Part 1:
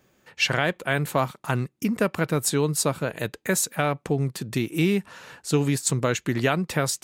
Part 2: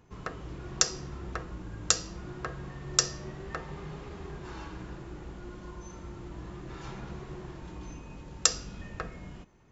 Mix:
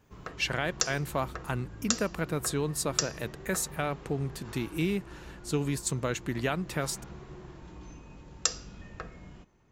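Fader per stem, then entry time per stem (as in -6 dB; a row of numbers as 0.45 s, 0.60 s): -7.5 dB, -4.0 dB; 0.00 s, 0.00 s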